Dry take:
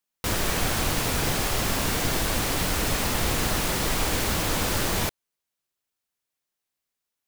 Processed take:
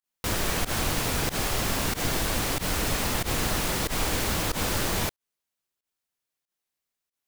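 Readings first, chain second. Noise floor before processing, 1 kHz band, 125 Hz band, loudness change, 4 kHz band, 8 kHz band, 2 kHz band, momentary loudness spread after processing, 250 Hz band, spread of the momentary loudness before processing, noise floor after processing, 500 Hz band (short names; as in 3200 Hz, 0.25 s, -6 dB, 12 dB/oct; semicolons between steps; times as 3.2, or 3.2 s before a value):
-85 dBFS, -2.0 dB, -2.0 dB, -2.0 dB, -2.0 dB, -2.0 dB, -2.0 dB, 1 LU, -2.0 dB, 1 LU, under -85 dBFS, -2.0 dB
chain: pump 93 bpm, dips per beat 1, -23 dB, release 89 ms; gain -1.5 dB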